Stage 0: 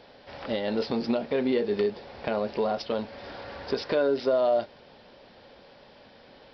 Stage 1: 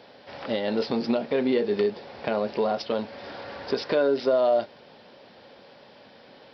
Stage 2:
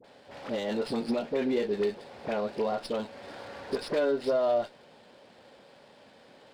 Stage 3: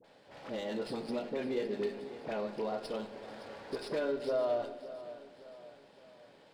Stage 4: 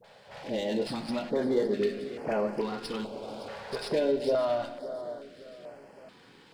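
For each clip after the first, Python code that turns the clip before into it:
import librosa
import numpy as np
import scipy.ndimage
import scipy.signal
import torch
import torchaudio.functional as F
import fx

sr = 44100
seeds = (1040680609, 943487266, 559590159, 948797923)

y1 = scipy.signal.sosfilt(scipy.signal.butter(2, 110.0, 'highpass', fs=sr, output='sos'), x)
y1 = F.gain(torch.from_numpy(y1), 2.0).numpy()
y2 = fx.dispersion(y1, sr, late='highs', ms=46.0, hz=970.0)
y2 = fx.running_max(y2, sr, window=3)
y2 = F.gain(torch.from_numpy(y2), -4.5).numpy()
y3 = fx.echo_feedback(y2, sr, ms=564, feedback_pct=47, wet_db=-15)
y3 = fx.room_shoebox(y3, sr, seeds[0], volume_m3=1100.0, walls='mixed', distance_m=0.65)
y3 = F.gain(torch.from_numpy(y3), -6.5).numpy()
y4 = fx.filter_held_notch(y3, sr, hz=2.3, low_hz=300.0, high_hz=3700.0)
y4 = F.gain(torch.from_numpy(y4), 8.0).numpy()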